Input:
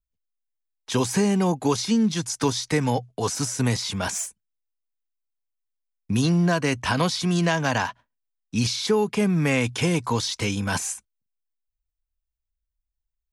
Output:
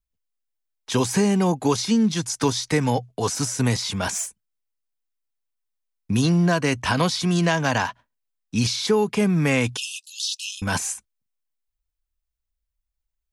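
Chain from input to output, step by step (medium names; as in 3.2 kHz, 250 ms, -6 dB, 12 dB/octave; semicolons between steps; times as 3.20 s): 9.77–10.62 s: brick-wall FIR high-pass 2.5 kHz; trim +1.5 dB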